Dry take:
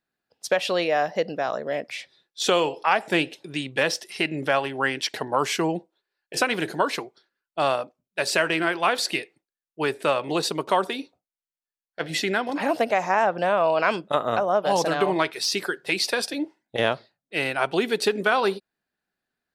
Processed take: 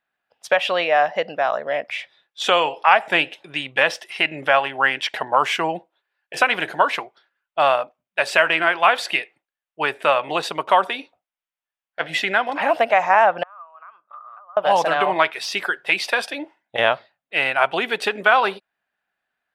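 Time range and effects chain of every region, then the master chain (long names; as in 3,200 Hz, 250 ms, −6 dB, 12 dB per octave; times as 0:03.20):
0:13.43–0:14.57: downward compressor 4 to 1, threshold −35 dBFS + resonant band-pass 1,200 Hz, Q 12
whole clip: flat-topped bell 1,400 Hz +12 dB 2.9 octaves; notch filter 4,200 Hz, Q 23; level −5 dB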